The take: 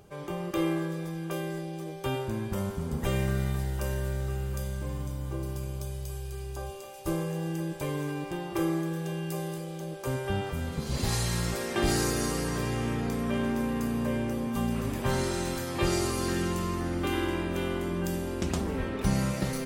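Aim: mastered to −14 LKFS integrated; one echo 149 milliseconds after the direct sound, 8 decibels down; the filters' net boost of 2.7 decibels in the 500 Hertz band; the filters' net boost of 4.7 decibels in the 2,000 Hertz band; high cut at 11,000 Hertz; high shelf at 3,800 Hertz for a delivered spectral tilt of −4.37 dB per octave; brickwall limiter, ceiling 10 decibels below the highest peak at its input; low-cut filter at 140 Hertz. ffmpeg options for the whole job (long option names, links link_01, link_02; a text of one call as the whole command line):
ffmpeg -i in.wav -af "highpass=140,lowpass=11000,equalizer=frequency=500:width_type=o:gain=3.5,equalizer=frequency=2000:width_type=o:gain=4.5,highshelf=frequency=3800:gain=5.5,alimiter=limit=-22.5dB:level=0:latency=1,aecho=1:1:149:0.398,volume=18.5dB" out.wav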